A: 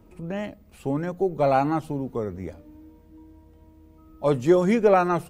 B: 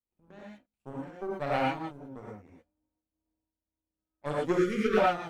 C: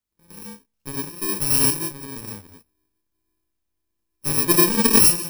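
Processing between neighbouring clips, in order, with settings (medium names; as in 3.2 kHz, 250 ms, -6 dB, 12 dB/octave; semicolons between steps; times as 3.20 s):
power-law waveshaper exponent 2; gated-style reverb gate 140 ms rising, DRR -4.5 dB; spectral selection erased 4.58–4.97 s, 530–1100 Hz; trim -5.5 dB
bit-reversed sample order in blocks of 64 samples; in parallel at -9 dB: hysteresis with a dead band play -44.5 dBFS; on the sum: trim +7.5 dB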